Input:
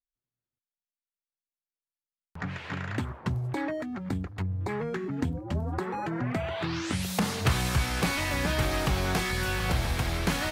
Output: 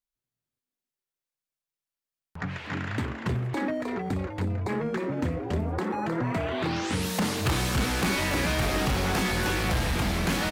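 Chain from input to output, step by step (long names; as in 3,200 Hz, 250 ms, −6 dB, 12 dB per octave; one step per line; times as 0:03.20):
echo with shifted repeats 310 ms, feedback 43%, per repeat +130 Hz, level −6 dB
gain into a clipping stage and back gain 22.5 dB
level +1.5 dB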